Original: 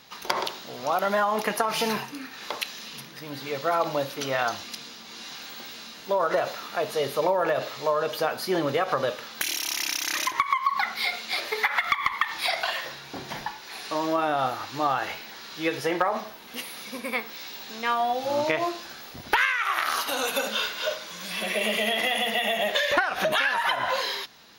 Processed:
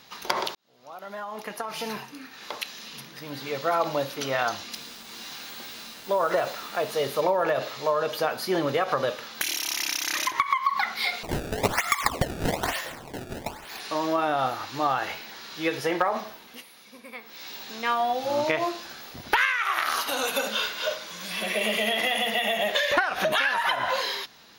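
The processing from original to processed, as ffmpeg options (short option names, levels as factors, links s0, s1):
-filter_complex "[0:a]asettb=1/sr,asplit=3[s0][s1][s2];[s0]atrim=end=4.734[s3];[s1]atrim=start=4.73:end=7.21,asetpts=PTS-STARTPTS,afade=t=in:d=0.004:c=qsin,afade=t=out:st=2.476:d=0.004:c=qsin,acrusher=bits=6:mix=0:aa=0.5[s4];[s2]atrim=start=7.206[s5];[s3][s4]acrossfade=d=0.004:c1=hsin:c2=qsin[s6];[s6][s5]acrossfade=d=0.004:c1=qsin:c2=hsin,asettb=1/sr,asplit=3[s7][s8][s9];[s7]atrim=end=11.234[s10];[s8]atrim=start=11.23:end=13.8,asetpts=PTS-STARTPTS,afade=t=in:d=0.004:c=qsin,afade=t=out:st=2.566:d=0.004:c=qsin,acrusher=samples=24:mix=1:aa=0.000001:lfo=1:lforange=38.4:lforate=1.1[s11];[s9]atrim=start=13.796[s12];[s10][s11]acrossfade=d=0.004:c1=hsin:c2=qsin[s13];[s13][s12]acrossfade=d=0.004:c1=qsin:c2=hsin,asplit=4[s14][s15][s16][s17];[s14]atrim=end=0.55,asetpts=PTS-STARTPTS,afade=t=out:st=0.546:d=0.004:c=hsin[s18];[s15]atrim=start=0.55:end=16.64,asetpts=PTS-STARTPTS,afade=t=in:d=2.77,afade=t=out:st=15.78:d=0.31:silence=0.251189[s19];[s16]atrim=start=16.64:end=17.2,asetpts=PTS-STARTPTS,volume=0.251[s20];[s17]atrim=start=17.2,asetpts=PTS-STARTPTS,afade=t=in:d=0.31:silence=0.251189[s21];[s18][s19][s20][s21]concat=n=4:v=0:a=1"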